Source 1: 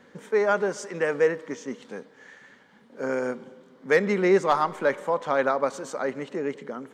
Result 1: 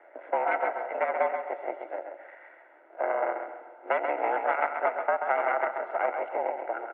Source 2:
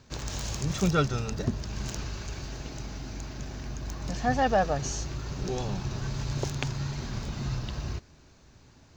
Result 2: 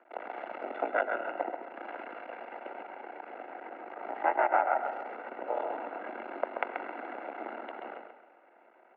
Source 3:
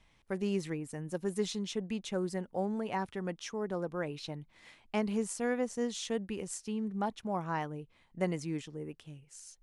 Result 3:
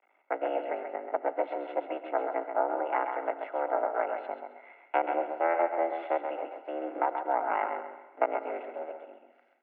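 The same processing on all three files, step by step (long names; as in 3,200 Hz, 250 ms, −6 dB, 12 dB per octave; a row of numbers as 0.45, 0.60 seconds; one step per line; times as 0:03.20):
sub-harmonics by changed cycles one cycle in 3, muted
tilt shelving filter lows +4.5 dB, about 1,100 Hz
harmonic generator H 4 −7 dB, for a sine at −7 dBFS
downward compressor 6 to 1, threshold −23 dBFS
comb filter 1.5 ms, depth 61%
on a send: repeating echo 133 ms, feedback 29%, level −6.5 dB
on the sum: comb and all-pass reverb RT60 1.3 s, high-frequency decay 0.9×, pre-delay 50 ms, DRR 14 dB
single-sideband voice off tune +98 Hz 310–2,300 Hz
normalise the peak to −12 dBFS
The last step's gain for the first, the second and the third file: +1.0, +1.0, +4.0 decibels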